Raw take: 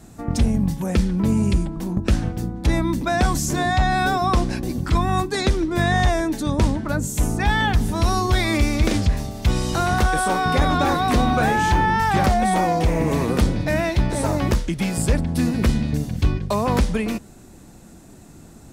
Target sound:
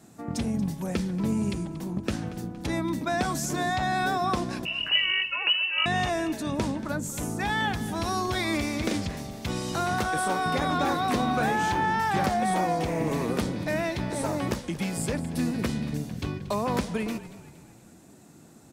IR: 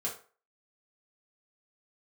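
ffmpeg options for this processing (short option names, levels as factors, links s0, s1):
-filter_complex "[0:a]asettb=1/sr,asplit=3[s0][s1][s2];[s0]atrim=end=4.654[s3];[s1]atrim=start=4.65:end=5.86,asetpts=PTS-STARTPTS,afade=t=in:d=0.004:c=qsin,afade=t=out:st=1.206:d=0.004:c=qsin,lowpass=f=2600:t=q:w=0.5098,lowpass=f=2600:t=q:w=0.6013,lowpass=f=2600:t=q:w=0.9,lowpass=f=2600:t=q:w=2.563,afreqshift=-3000[s4];[s2]atrim=start=5.856[s5];[s3][s4]acrossfade=d=0.004:c1=hsin:c2=qsin[s6];[s6][s5]acrossfade=d=0.004:c1=qsin:c2=hsin,highpass=140,asplit=2[s7][s8];[s8]asplit=4[s9][s10][s11][s12];[s9]adelay=232,afreqshift=-34,volume=0.158[s13];[s10]adelay=464,afreqshift=-68,volume=0.0759[s14];[s11]adelay=696,afreqshift=-102,volume=0.0363[s15];[s12]adelay=928,afreqshift=-136,volume=0.0176[s16];[s13][s14][s15][s16]amix=inputs=4:normalize=0[s17];[s7][s17]amix=inputs=2:normalize=0,volume=0.501"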